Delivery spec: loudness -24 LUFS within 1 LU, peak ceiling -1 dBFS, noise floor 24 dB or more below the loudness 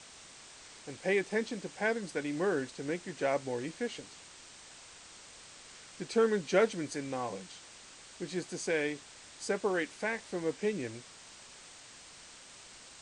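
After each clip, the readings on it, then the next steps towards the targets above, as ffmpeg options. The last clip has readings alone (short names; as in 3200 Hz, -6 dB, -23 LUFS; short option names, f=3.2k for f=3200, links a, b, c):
noise floor -53 dBFS; noise floor target -58 dBFS; loudness -34.0 LUFS; peak -13.5 dBFS; loudness target -24.0 LUFS
-> -af "afftdn=nr=6:nf=-53"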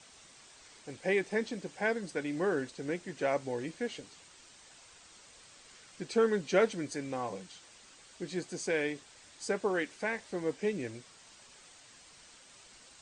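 noise floor -57 dBFS; noise floor target -58 dBFS
-> -af "afftdn=nr=6:nf=-57"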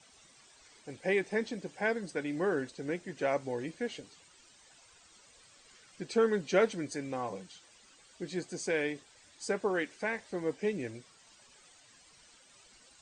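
noise floor -61 dBFS; loudness -34.0 LUFS; peak -13.0 dBFS; loudness target -24.0 LUFS
-> -af "volume=10dB"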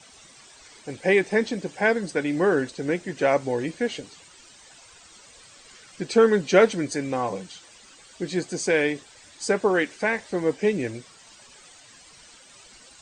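loudness -24.0 LUFS; peak -3.0 dBFS; noise floor -51 dBFS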